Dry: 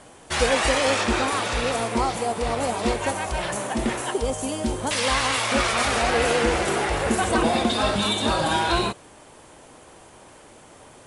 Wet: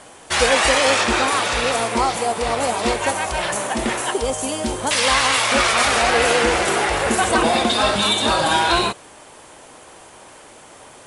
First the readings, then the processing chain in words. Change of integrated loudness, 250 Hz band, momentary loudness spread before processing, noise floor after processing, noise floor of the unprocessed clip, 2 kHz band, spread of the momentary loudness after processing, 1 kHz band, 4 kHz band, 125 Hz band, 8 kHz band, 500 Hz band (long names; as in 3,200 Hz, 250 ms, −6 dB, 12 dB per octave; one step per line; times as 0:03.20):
+5.0 dB, +1.0 dB, 6 LU, −44 dBFS, −49 dBFS, +6.0 dB, 7 LU, +5.5 dB, +6.5 dB, −1.0 dB, +6.5 dB, +3.5 dB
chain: low-shelf EQ 380 Hz −8 dB
level +6.5 dB